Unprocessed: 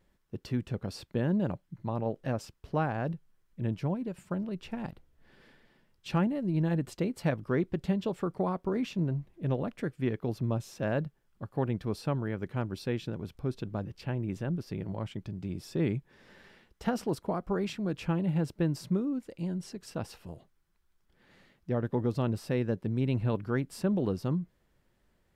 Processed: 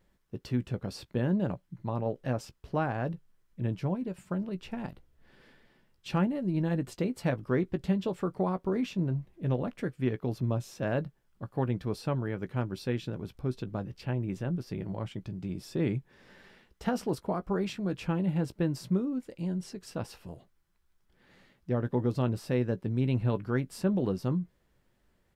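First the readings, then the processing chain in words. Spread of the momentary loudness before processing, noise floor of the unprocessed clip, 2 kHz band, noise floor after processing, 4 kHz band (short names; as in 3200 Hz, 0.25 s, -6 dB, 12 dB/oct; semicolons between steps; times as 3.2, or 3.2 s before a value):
9 LU, -71 dBFS, 0.0 dB, -71 dBFS, 0.0 dB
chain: doubler 16 ms -12 dB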